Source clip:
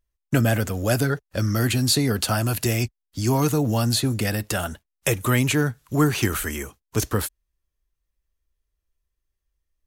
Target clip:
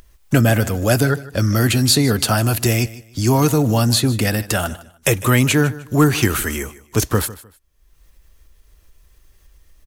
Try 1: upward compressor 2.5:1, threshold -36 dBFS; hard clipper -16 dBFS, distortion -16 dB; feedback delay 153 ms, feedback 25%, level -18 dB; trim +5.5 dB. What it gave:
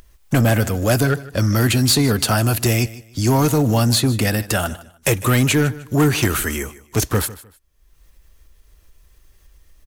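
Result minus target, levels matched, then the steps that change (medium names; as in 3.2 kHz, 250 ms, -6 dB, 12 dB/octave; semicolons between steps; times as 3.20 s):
hard clipper: distortion +23 dB
change: hard clipper -9 dBFS, distortion -39 dB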